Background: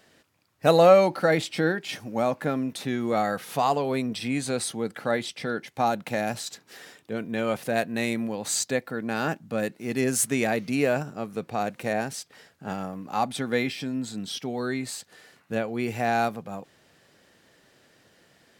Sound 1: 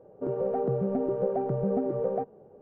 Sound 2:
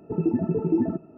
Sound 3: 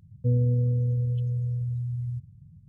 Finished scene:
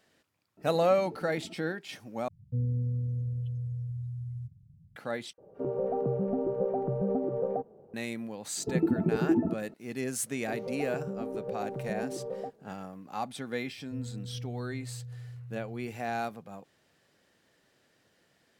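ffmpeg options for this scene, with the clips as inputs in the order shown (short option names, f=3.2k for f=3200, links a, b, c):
-filter_complex "[2:a]asplit=2[a][b];[3:a]asplit=2[c][d];[1:a]asplit=2[e][f];[0:a]volume=-9dB[g];[a]acompressor=threshold=-37dB:ratio=6:attack=3.2:release=140:knee=1:detection=peak[h];[c]equalizer=f=490:w=5.3:g=-7.5[i];[e]acrossover=split=1600[j][k];[j]adelay=50[l];[l][k]amix=inputs=2:normalize=0[m];[b]lowpass=2.3k[n];[d]aecho=1:1:427:0.376[o];[g]asplit=3[p][q][r];[p]atrim=end=2.284[s];[i]atrim=end=2.68,asetpts=PTS-STARTPTS,volume=-7dB[t];[q]atrim=start=4.956:end=5.334[u];[m]atrim=end=2.61,asetpts=PTS-STARTPTS,volume=-2dB[v];[r]atrim=start=7.936[w];[h]atrim=end=1.17,asetpts=PTS-STARTPTS,volume=-6.5dB,afade=t=in:d=0.004:c=hsin,afade=t=out:st=1.166:d=0.004:c=hsin,adelay=570[x];[n]atrim=end=1.17,asetpts=PTS-STARTPTS,volume=-3dB,afade=t=in:d=0.004:c=hsin,afade=t=out:st=1.166:d=0.004:c=hsin,adelay=8570[y];[f]atrim=end=2.61,asetpts=PTS-STARTPTS,volume=-8.5dB,afade=t=in:d=0.004:c=hsin,afade=t=out:st=2.606:d=0.004:c=hsin,adelay=452466S[z];[o]atrim=end=2.68,asetpts=PTS-STARTPTS,volume=-18dB,afade=t=in:d=0.004:c=hsin,afade=t=out:st=2.676:d=0.004:c=hsin,adelay=13670[aa];[s][t]acrossfade=d=0.004:c1=hsin:c2=hsin[ab];[ab][u]acrossfade=d=0.004:c1=hsin:c2=hsin[ac];[ac][v]acrossfade=d=0.004:c1=hsin:c2=hsin[ad];[ad][w]acrossfade=d=0.004:c1=hsin:c2=hsin[ae];[ae][x][y][z][aa]amix=inputs=5:normalize=0"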